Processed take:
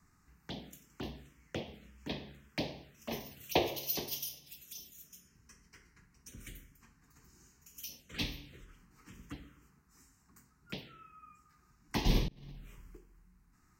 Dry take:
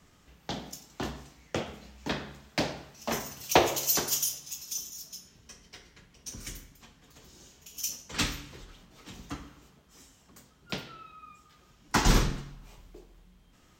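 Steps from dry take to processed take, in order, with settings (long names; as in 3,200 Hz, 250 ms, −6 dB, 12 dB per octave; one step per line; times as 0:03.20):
phaser swept by the level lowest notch 530 Hz, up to 1,400 Hz, full sweep at −32.5 dBFS
0:12.28–0:12.97: compressor whose output falls as the input rises −46 dBFS, ratio −1
level −5.5 dB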